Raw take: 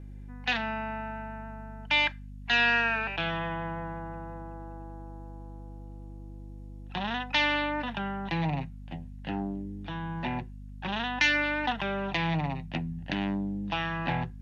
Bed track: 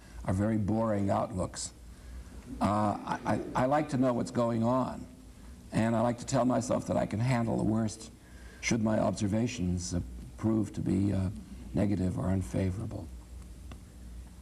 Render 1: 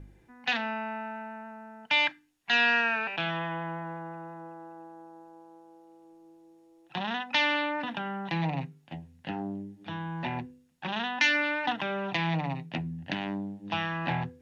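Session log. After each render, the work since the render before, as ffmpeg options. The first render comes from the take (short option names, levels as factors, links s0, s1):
-af "bandreject=f=50:t=h:w=4,bandreject=f=100:t=h:w=4,bandreject=f=150:t=h:w=4,bandreject=f=200:t=h:w=4,bandreject=f=250:t=h:w=4,bandreject=f=300:t=h:w=4,bandreject=f=350:t=h:w=4,bandreject=f=400:t=h:w=4,bandreject=f=450:t=h:w=4,bandreject=f=500:t=h:w=4"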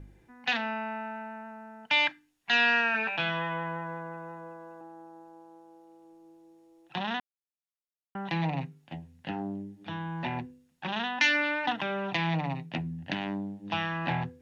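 -filter_complex "[0:a]asettb=1/sr,asplit=3[s0][s1][s2];[s0]atrim=end=2.934[s3];[s1]atrim=start=2.93:end=4.81,asetpts=PTS-STARTPTS,afade=t=in:d=0.004:c=qsin,afade=t=out:st=1.876:d=0.004:c=qsin,asplit=2[s4][s5];[s5]adelay=14,volume=0.668[s6];[s4][s6]amix=inputs=2:normalize=0,atrim=end_sample=82908[s7];[s2]atrim=start=4.806[s8];[s3][s7]acrossfade=d=0.004:c1=hsin:c2=qsin[s9];[s9][s8]acrossfade=d=0.004:c1=qsin:c2=hsin,asplit=3[s10][s11][s12];[s10]atrim=end=7.2,asetpts=PTS-STARTPTS,afade=t=out:st=7.196:d=0.004:c=hsin[s13];[s11]atrim=start=7.2:end=8.15,asetpts=PTS-STARTPTS,volume=0[s14];[s12]atrim=start=8.15,asetpts=PTS-STARTPTS,afade=t=in:d=0.004:c=hsin[s15];[s13][s14][s15]concat=n=3:v=0:a=1"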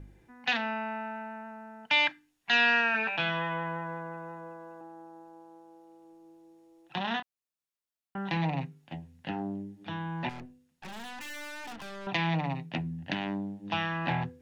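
-filter_complex "[0:a]asettb=1/sr,asplit=3[s0][s1][s2];[s0]atrim=end=7.024[s3];[s1]atrim=start=7.02:end=8.37,asetpts=PTS-STARTPTS,afade=t=in:d=0.004:c=qsin,afade=t=out:st=1.346:d=0.004:c=qsin,asplit=2[s4][s5];[s5]adelay=26,volume=0.398[s6];[s4][s6]amix=inputs=2:normalize=0,atrim=end_sample=59535[s7];[s2]atrim=start=8.366[s8];[s3][s7]acrossfade=d=0.004:c1=hsin:c2=qsin[s9];[s9][s8]acrossfade=d=0.004:c1=qsin:c2=hsin,asettb=1/sr,asplit=3[s10][s11][s12];[s10]atrim=end=10.294[s13];[s11]atrim=start=10.29:end=12.07,asetpts=PTS-STARTPTS,afade=t=in:d=0.004:c=qsin,afade=t=out:st=1.776:d=0.004:c=qsin,aeval=exprs='(tanh(112*val(0)+0.6)-tanh(0.6))/112':c=same[s14];[s12]atrim=start=12.066[s15];[s13][s14]acrossfade=d=0.004:c1=hsin:c2=qsin[s16];[s16][s15]acrossfade=d=0.004:c1=qsin:c2=hsin"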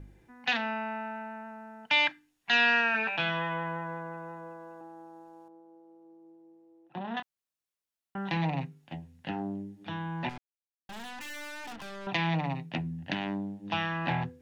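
-filter_complex "[0:a]asettb=1/sr,asplit=3[s0][s1][s2];[s0]atrim=end=5.484[s3];[s1]atrim=start=5.48:end=7.17,asetpts=PTS-STARTPTS,afade=t=in:d=0.004:c=qsin,afade=t=out:st=1.686:d=0.004:c=qsin,bandpass=f=330:t=q:w=0.72[s4];[s2]atrim=start=7.166[s5];[s3][s4]acrossfade=d=0.004:c1=hsin:c2=qsin[s6];[s6][s5]acrossfade=d=0.004:c1=qsin:c2=hsin,asplit=3[s7][s8][s9];[s7]atrim=end=10.38,asetpts=PTS-STARTPTS,afade=t=out:st=10.376:d=0.004:c=hsin[s10];[s8]atrim=start=10.38:end=10.89,asetpts=PTS-STARTPTS,volume=0[s11];[s9]atrim=start=10.89,asetpts=PTS-STARTPTS,afade=t=in:d=0.004:c=hsin[s12];[s10][s11][s12]concat=n=3:v=0:a=1"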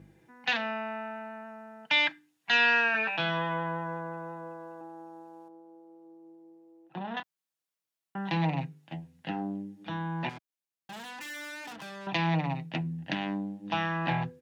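-af "highpass=110,aecho=1:1:6.2:0.35"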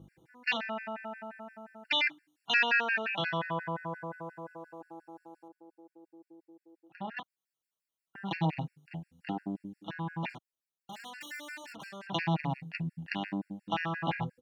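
-af "afftfilt=real='re*gt(sin(2*PI*5.7*pts/sr)*(1-2*mod(floor(b*sr/1024/1400),2)),0)':imag='im*gt(sin(2*PI*5.7*pts/sr)*(1-2*mod(floor(b*sr/1024/1400),2)),0)':win_size=1024:overlap=0.75"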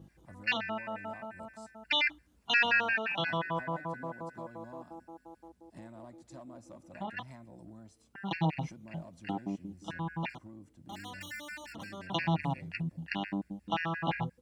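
-filter_complex "[1:a]volume=0.0794[s0];[0:a][s0]amix=inputs=2:normalize=0"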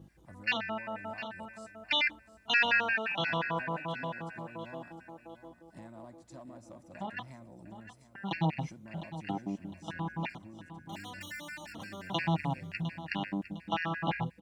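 -af "aecho=1:1:706|1412|2118:0.237|0.0806|0.0274"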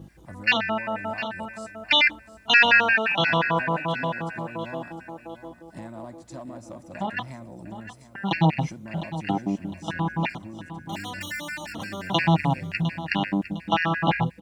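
-af "volume=3.16"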